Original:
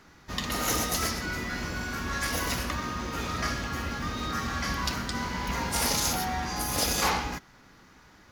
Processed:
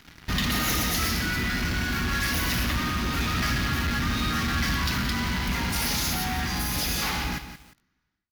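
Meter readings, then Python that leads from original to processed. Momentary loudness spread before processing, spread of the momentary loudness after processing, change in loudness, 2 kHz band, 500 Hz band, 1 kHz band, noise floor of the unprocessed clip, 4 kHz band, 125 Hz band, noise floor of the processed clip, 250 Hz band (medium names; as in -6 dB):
7 LU, 3 LU, +3.5 dB, +5.0 dB, -2.0 dB, 0.0 dB, -56 dBFS, +4.0 dB, +6.5 dB, -74 dBFS, +5.0 dB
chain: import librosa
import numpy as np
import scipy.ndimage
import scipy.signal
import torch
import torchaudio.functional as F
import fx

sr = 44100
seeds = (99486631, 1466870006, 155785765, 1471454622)

p1 = fx.fade_out_tail(x, sr, length_s=1.91)
p2 = fx.fuzz(p1, sr, gain_db=44.0, gate_db=-51.0)
p3 = p1 + (p2 * librosa.db_to_amplitude(-9.5))
p4 = fx.rider(p3, sr, range_db=4, speed_s=2.0)
p5 = fx.graphic_eq_10(p4, sr, hz=(500, 1000, 8000), db=(-10, -6, -9))
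p6 = fx.echo_crushed(p5, sr, ms=176, feedback_pct=35, bits=7, wet_db=-10.0)
y = p6 * librosa.db_to_amplitude(-3.0)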